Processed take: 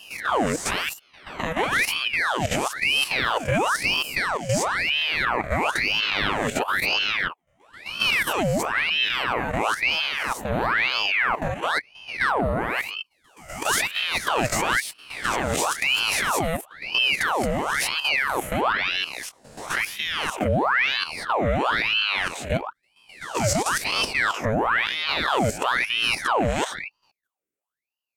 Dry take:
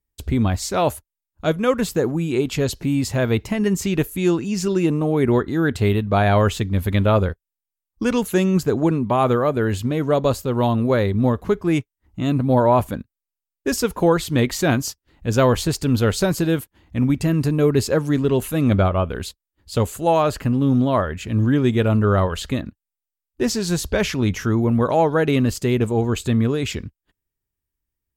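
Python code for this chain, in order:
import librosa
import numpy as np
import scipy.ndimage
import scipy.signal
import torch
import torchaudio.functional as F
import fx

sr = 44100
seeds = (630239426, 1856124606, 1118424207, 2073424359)

y = fx.spec_swells(x, sr, rise_s=0.69)
y = fx.level_steps(y, sr, step_db=11)
y = fx.graphic_eq(y, sr, hz=(250, 500, 2000, 4000, 8000), db=(8, -11, 11, -7, 7))
y = fx.ring_lfo(y, sr, carrier_hz=1600.0, swing_pct=80, hz=1.0)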